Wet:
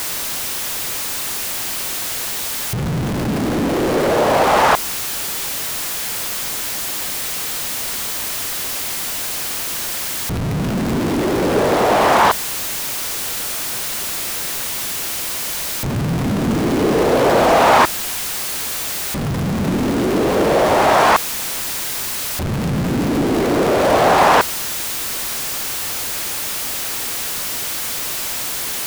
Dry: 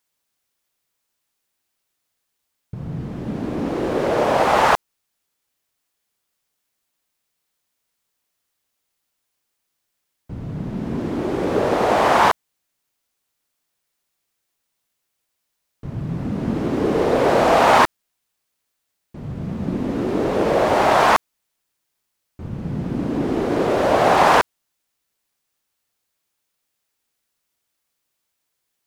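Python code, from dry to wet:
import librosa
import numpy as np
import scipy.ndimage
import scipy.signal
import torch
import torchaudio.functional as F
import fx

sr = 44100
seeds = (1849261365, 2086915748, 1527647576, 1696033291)

y = x + 0.5 * 10.0 ** (-17.5 / 20.0) * np.sign(x)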